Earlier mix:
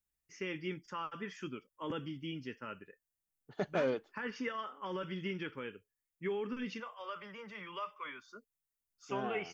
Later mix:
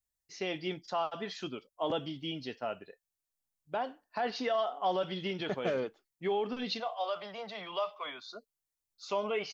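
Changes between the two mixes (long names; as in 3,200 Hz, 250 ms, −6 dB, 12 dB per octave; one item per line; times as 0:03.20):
first voice: remove phaser with its sweep stopped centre 1,700 Hz, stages 4
second voice: entry +1.90 s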